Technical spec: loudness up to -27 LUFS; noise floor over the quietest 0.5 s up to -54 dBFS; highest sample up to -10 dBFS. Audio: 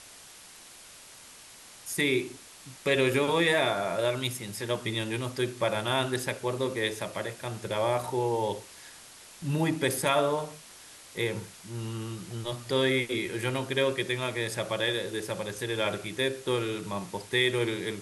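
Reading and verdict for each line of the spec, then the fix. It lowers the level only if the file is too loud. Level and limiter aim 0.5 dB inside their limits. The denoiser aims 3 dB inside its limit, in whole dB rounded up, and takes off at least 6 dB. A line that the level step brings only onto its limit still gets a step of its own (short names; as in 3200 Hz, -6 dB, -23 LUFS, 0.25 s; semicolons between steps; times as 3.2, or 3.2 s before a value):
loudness -29.5 LUFS: OK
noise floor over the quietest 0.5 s -50 dBFS: fail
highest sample -11.5 dBFS: OK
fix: denoiser 7 dB, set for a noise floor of -50 dBFS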